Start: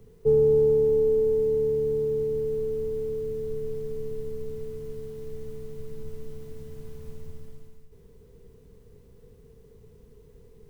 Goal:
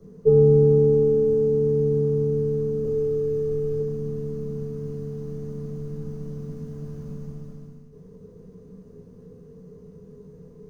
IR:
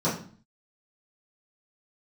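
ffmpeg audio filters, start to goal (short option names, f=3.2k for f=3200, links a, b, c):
-filter_complex "[0:a]asettb=1/sr,asplit=3[a][b][c];[a]atrim=end=2.844[d];[b]atrim=start=2.84:end=3.79,asetpts=PTS-STARTPTS,afade=t=in:d=0.004:c=qsin,afade=t=out:st=0.946:d=0.004:c=qsin,aecho=1:1:2.4:0.63,atrim=end_sample=41895[e];[c]atrim=start=3.786[f];[d][e]acrossfade=d=0.004:c1=hsin:c2=qsin[g];[g][f]acrossfade=d=0.004:c1=qsin:c2=hsin[h];[1:a]atrim=start_sample=2205,asetrate=48510,aresample=44100[i];[h][i]afir=irnorm=-1:irlink=0,volume=-9dB"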